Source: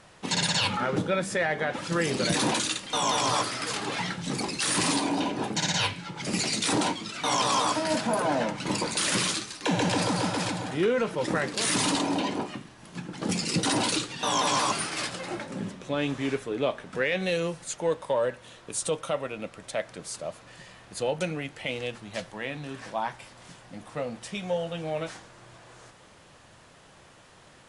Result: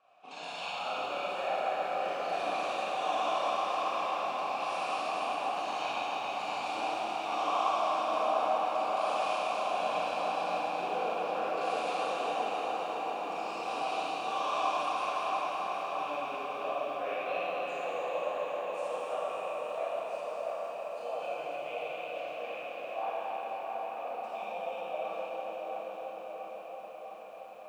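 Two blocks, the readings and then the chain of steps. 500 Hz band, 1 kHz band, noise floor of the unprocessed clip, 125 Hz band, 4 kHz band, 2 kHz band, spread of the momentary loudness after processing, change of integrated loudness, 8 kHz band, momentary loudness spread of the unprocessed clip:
-3.5 dB, +0.5 dB, -54 dBFS, -25.0 dB, -12.0 dB, -7.5 dB, 8 LU, -5.5 dB, -22.0 dB, 12 LU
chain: dark delay 0.675 s, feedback 69%, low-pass 2100 Hz, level -4.5 dB; Schroeder reverb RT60 3.4 s, combs from 27 ms, DRR -9 dB; flange 1.3 Hz, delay 6 ms, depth 8.2 ms, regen -52%; vowel filter a; low shelf 320 Hz -6.5 dB; lo-fi delay 0.269 s, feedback 80%, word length 11-bit, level -8 dB

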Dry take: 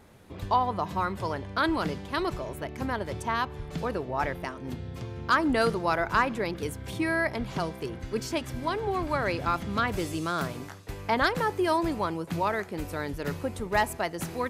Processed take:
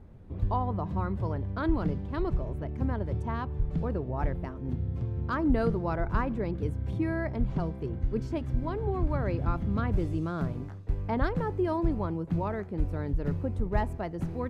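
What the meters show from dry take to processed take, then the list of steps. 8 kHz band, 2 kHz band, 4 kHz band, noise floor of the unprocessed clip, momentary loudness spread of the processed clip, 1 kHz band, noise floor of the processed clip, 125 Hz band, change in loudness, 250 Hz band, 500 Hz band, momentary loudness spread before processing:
under -20 dB, -11.5 dB, -16.5 dB, -42 dBFS, 5 LU, -8.0 dB, -40 dBFS, +6.0 dB, -2.0 dB, +0.5 dB, -3.5 dB, 10 LU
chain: tilt -4.5 dB/oct; gain -8 dB

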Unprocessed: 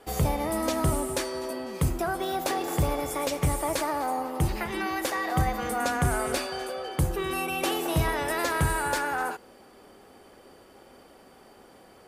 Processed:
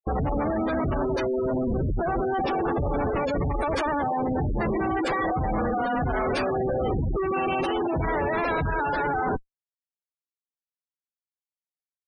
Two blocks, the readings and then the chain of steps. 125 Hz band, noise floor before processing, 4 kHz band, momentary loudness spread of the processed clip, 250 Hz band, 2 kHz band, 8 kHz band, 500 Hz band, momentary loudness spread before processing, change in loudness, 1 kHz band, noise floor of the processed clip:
0.0 dB, -54 dBFS, -6.0 dB, 1 LU, +4.5 dB, 0.0 dB, under -15 dB, +4.5 dB, 5 LU, +2.0 dB, +2.5 dB, under -85 dBFS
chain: Schmitt trigger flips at -34 dBFS; spectral gate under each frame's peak -15 dB strong; gain +5 dB

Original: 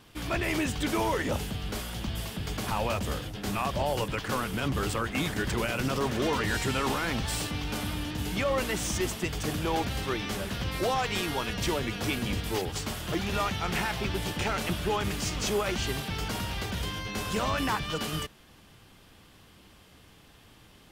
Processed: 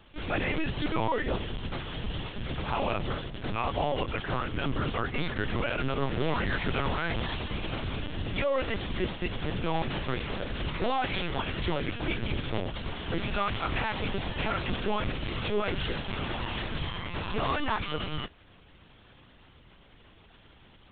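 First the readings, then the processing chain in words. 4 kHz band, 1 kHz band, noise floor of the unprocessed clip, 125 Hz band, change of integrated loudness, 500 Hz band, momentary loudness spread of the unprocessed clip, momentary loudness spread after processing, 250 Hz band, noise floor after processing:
-2.5 dB, -0.5 dB, -56 dBFS, -1.0 dB, -1.5 dB, -1.0 dB, 5 LU, 6 LU, -2.0 dB, -56 dBFS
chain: LPC vocoder at 8 kHz pitch kept

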